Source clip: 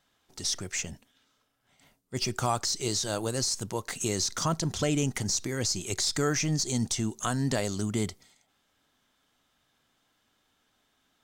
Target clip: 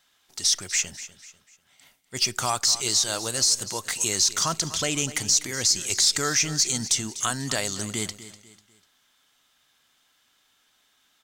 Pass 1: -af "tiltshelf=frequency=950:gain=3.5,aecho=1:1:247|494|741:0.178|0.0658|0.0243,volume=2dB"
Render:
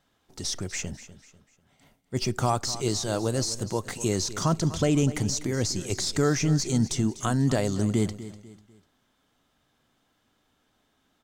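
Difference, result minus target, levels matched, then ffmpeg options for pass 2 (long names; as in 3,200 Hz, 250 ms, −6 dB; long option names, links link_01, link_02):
1,000 Hz band +3.5 dB
-af "tiltshelf=frequency=950:gain=-7,aecho=1:1:247|494|741:0.178|0.0658|0.0243,volume=2dB"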